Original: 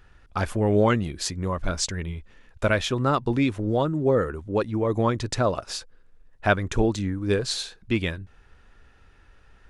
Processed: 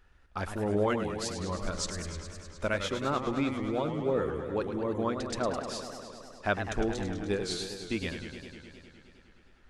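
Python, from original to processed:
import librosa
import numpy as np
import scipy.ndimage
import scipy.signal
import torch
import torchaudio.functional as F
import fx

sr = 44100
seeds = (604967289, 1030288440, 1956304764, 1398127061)

y = fx.peak_eq(x, sr, hz=120.0, db=-10.5, octaves=0.34)
y = fx.echo_warbled(y, sr, ms=103, feedback_pct=79, rate_hz=2.8, cents=158, wet_db=-8.5)
y = y * librosa.db_to_amplitude(-8.0)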